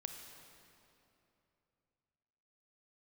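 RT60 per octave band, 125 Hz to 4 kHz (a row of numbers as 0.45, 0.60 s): 3.6, 3.2, 3.1, 2.8, 2.5, 2.1 s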